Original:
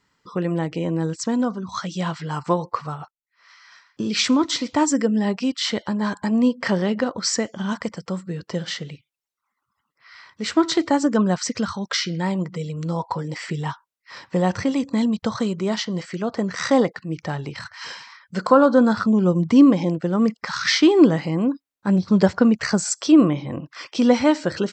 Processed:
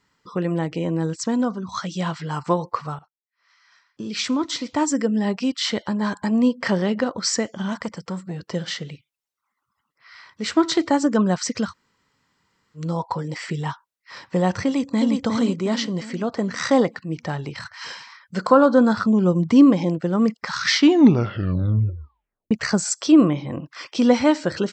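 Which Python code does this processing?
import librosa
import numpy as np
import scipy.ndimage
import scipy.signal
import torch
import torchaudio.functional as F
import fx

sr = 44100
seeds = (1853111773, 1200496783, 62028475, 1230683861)

y = fx.transformer_sat(x, sr, knee_hz=610.0, at=(7.68, 8.49))
y = fx.echo_throw(y, sr, start_s=14.65, length_s=0.49, ms=360, feedback_pct=45, wet_db=-3.5)
y = fx.edit(y, sr, fx.fade_in_from(start_s=2.99, length_s=2.47, floor_db=-18.0),
    fx.room_tone_fill(start_s=11.69, length_s=1.1, crossfade_s=0.1),
    fx.tape_stop(start_s=20.74, length_s=1.77), tone=tone)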